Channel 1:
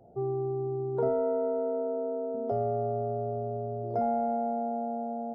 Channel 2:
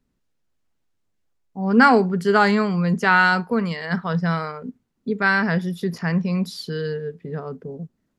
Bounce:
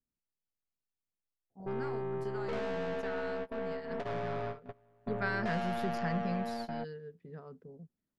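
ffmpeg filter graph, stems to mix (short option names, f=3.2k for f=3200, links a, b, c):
-filter_complex "[0:a]aeval=exprs='(tanh(63.1*val(0)+0.45)-tanh(0.45))/63.1':c=same,adelay=1500,volume=1.5dB[a];[1:a]acompressor=threshold=-20dB:ratio=5,volume=-11dB,afade=t=in:st=4.83:d=0.34:silence=0.281838,afade=t=out:st=6.31:d=0.26:silence=0.473151,asplit=2[b][c];[c]apad=whole_len=302016[d];[a][d]sidechaingate=range=-29dB:threshold=-51dB:ratio=16:detection=peak[e];[e][b]amix=inputs=2:normalize=0"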